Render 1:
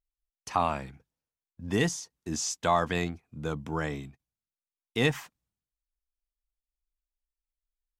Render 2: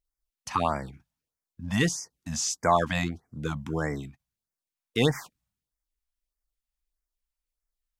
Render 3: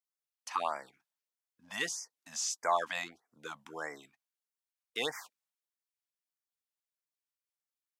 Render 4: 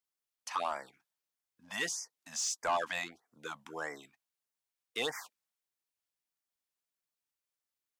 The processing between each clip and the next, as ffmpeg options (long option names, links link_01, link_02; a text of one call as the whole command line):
ffmpeg -i in.wav -af "afftfilt=real='re*(1-between(b*sr/1024,350*pow(3400/350,0.5+0.5*sin(2*PI*1.6*pts/sr))/1.41,350*pow(3400/350,0.5+0.5*sin(2*PI*1.6*pts/sr))*1.41))':imag='im*(1-between(b*sr/1024,350*pow(3400/350,0.5+0.5*sin(2*PI*1.6*pts/sr))/1.41,350*pow(3400/350,0.5+0.5*sin(2*PI*1.6*pts/sr))*1.41))':win_size=1024:overlap=0.75,volume=3dB" out.wav
ffmpeg -i in.wav -af "highpass=630,volume=-5.5dB" out.wav
ffmpeg -i in.wav -af "asoftclip=type=tanh:threshold=-26dB,volume=1.5dB" out.wav